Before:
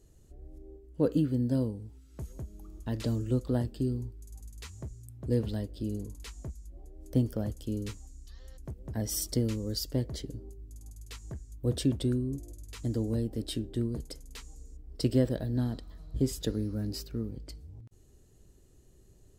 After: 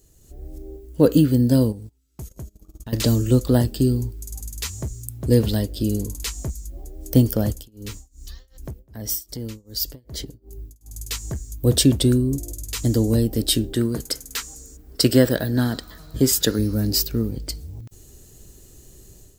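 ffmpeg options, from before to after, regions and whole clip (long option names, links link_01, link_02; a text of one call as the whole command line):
ffmpeg -i in.wav -filter_complex "[0:a]asettb=1/sr,asplit=3[link_01][link_02][link_03];[link_01]atrim=end=1.724[link_04];[link_02]atrim=start=1.72:end=2.93,asetpts=PTS-STARTPTS,afade=type=in:duration=0.004:curve=qsin,afade=type=out:start_time=1.206:duration=0.004:curve=qsin,agate=range=-25dB:threshold=-44dB:ratio=16:release=100:detection=peak,acompressor=threshold=-46dB:ratio=3:attack=3.2:release=140:knee=1:detection=peak[link_05];[link_03]atrim=start=2.926[link_06];[link_04][link_05]acrossfade=duration=0.004:curve1=hsin:curve2=qsin[link_07];[link_07][link_06]acrossfade=duration=0.004:curve1=qsin:curve2=hsin,asettb=1/sr,asplit=3[link_08][link_09][link_10];[link_08]atrim=end=7.524[link_11];[link_09]atrim=start=7.52:end=10.94,asetpts=PTS-STARTPTS,afade=type=in:duration=0.004:curve=qsin,afade=type=out:start_time=3.416:duration=0.004:curve=qsin,equalizer=frequency=8200:width_type=o:width=1.7:gain=-4.5,acompressor=threshold=-42dB:ratio=3:attack=3.2:release=140:knee=1:detection=peak,tremolo=f=2.6:d=0.96[link_12];[link_10]atrim=start=10.936[link_13];[link_11][link_12]acrossfade=duration=0.004:curve1=hsin:curve2=qsin[link_14];[link_14][link_13]acrossfade=duration=0.004:curve1=qsin:curve2=hsin,asettb=1/sr,asplit=3[link_15][link_16][link_17];[link_15]atrim=end=13.734[link_18];[link_16]atrim=start=13.73:end=16.59,asetpts=PTS-STARTPTS,afade=type=in:duration=0.004:curve=qsin,afade=type=out:start_time=2.856:duration=0.004:curve=qsin,highpass=frequency=150:poles=1,equalizer=frequency=1500:width=1.9:gain=8.5[link_19];[link_17]atrim=start=16.586[link_20];[link_18][link_19]acrossfade=duration=0.004:curve1=hsin:curve2=qsin[link_21];[link_21][link_20]acrossfade=duration=0.004:curve1=qsin:curve2=hsin,aemphasis=mode=production:type=75fm,dynaudnorm=framelen=200:gausssize=3:maxgain=10dB,equalizer=frequency=11000:width=1.1:gain=-7,volume=2.5dB" out.wav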